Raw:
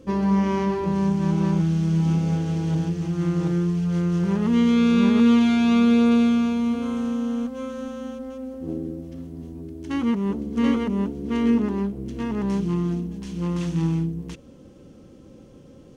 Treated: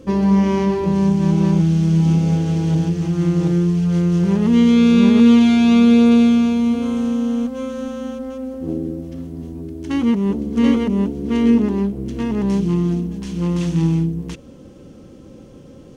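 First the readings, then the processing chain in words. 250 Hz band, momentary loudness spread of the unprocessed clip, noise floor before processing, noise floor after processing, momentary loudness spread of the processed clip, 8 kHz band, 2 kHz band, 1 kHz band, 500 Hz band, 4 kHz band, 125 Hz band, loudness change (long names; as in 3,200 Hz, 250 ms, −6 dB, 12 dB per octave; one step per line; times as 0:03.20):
+6.0 dB, 16 LU, −47 dBFS, −41 dBFS, 16 LU, can't be measured, +3.5 dB, +2.5 dB, +5.5 dB, +5.5 dB, +6.0 dB, +6.0 dB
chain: dynamic equaliser 1,300 Hz, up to −6 dB, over −42 dBFS, Q 1.3
level +6 dB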